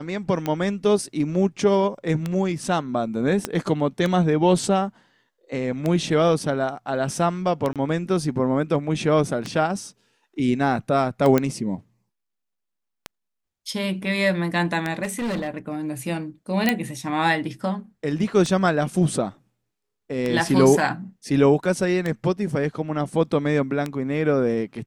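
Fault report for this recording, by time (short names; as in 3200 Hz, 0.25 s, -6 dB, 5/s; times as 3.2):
tick 33 1/3 rpm -12 dBFS
3.45 pop -9 dBFS
7.73–7.76 gap 27 ms
11.38 pop -7 dBFS
15.03–15.49 clipped -23 dBFS
16.69 pop -5 dBFS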